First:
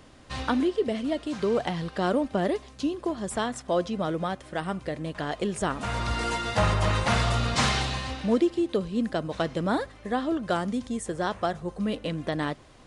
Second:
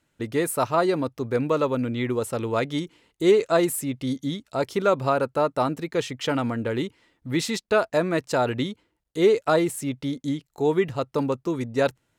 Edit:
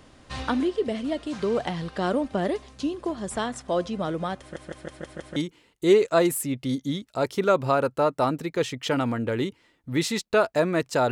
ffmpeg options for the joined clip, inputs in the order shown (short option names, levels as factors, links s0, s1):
-filter_complex "[0:a]apad=whole_dur=11.11,atrim=end=11.11,asplit=6[s0][s1][s2][s3][s4][s5];[s0]atrim=end=4.562[s6];[s1]atrim=start=4.398:end=4.562[s7];[s2]atrim=start=4.398:end=4.562[s8];[s3]atrim=start=4.398:end=4.562[s9];[s4]atrim=start=4.398:end=4.562[s10];[s5]atrim=start=4.398:end=4.562[s11];[1:a]atrim=start=2.738:end=8.49[s12];[s6][s7]acrossfade=d=0.004:c1=hsin:c2=hsin[s13];[s13][s8]acrossfade=d=0.004:c1=hsin:c2=hsin[s14];[s14][s9]acrossfade=d=0.004:c1=hsin:c2=hsin[s15];[s15][s10]acrossfade=d=0.004:c1=hsin:c2=hsin[s16];[s16][s11]acrossfade=d=0.004:c1=hsin:c2=hsin[s17];[s17][s12]acrossfade=d=0.004:c1=hsin:c2=hsin"